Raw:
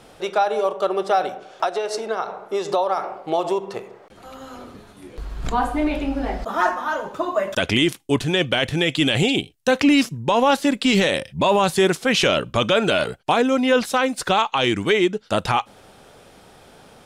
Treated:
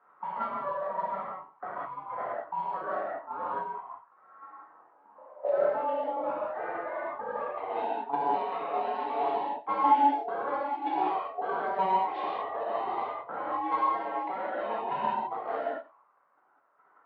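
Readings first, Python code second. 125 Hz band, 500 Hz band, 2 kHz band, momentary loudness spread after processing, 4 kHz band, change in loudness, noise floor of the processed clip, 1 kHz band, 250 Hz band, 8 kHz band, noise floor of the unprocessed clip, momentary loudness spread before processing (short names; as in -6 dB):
under -25 dB, -12.0 dB, -17.5 dB, 10 LU, -28.5 dB, -10.5 dB, -64 dBFS, -4.5 dB, -20.0 dB, under -40 dB, -49 dBFS, 9 LU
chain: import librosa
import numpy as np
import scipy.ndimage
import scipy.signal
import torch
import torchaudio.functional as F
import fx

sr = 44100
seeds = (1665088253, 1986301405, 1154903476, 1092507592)

p1 = fx.cvsd(x, sr, bps=32000)
p2 = scipy.signal.sosfilt(scipy.signal.butter(4, 3800.0, 'lowpass', fs=sr, output='sos'), p1)
p3 = p2 * np.sin(2.0 * np.pi * 570.0 * np.arange(len(p2)) / sr)
p4 = fx.dereverb_blind(p3, sr, rt60_s=0.85)
p5 = fx.highpass(p4, sr, hz=470.0, slope=6)
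p6 = fx.level_steps(p5, sr, step_db=11)
p7 = fx.auto_wah(p6, sr, base_hz=610.0, top_hz=1500.0, q=3.4, full_db=-35.0, direction='down')
p8 = fx.rev_gated(p7, sr, seeds[0], gate_ms=230, shape='flat', drr_db=-7.0)
p9 = fx.env_lowpass(p8, sr, base_hz=640.0, full_db=-29.0)
p10 = p9 + fx.echo_single(p9, sr, ms=92, db=-19.0, dry=0)
y = F.gain(torch.from_numpy(p10), 4.5).numpy()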